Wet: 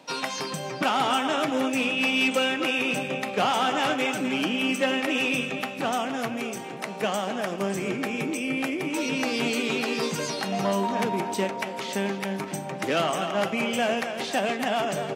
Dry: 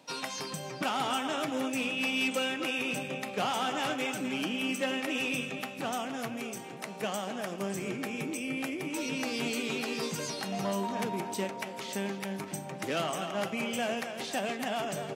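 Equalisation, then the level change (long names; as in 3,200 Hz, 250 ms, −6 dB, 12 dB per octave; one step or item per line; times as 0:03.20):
high-pass filter 91 Hz
low-shelf EQ 210 Hz −3.5 dB
high-shelf EQ 5,500 Hz −7 dB
+8.0 dB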